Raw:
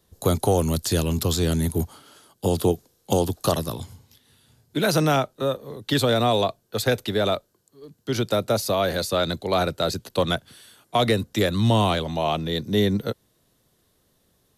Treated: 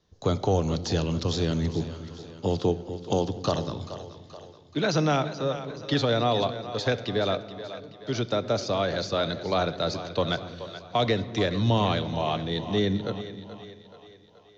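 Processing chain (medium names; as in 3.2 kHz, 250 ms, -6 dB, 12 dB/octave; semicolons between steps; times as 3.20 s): steep low-pass 6.5 kHz 72 dB/octave; on a send: two-band feedback delay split 340 Hz, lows 242 ms, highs 428 ms, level -12.5 dB; on the sum: simulated room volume 2200 m³, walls mixed, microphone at 0.41 m; trim -4 dB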